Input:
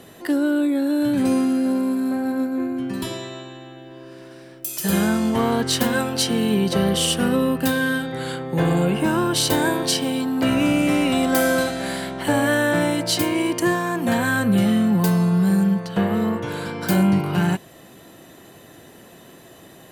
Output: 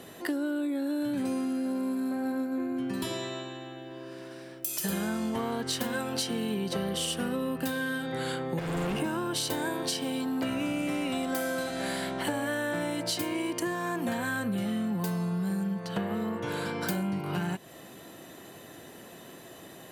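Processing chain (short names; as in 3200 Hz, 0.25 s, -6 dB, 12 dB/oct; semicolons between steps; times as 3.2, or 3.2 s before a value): low shelf 110 Hz -7 dB; 8.59–9 hard clip -25 dBFS, distortion -19 dB; compressor 6:1, threshold -27 dBFS, peak gain reduction 11.5 dB; gain -1.5 dB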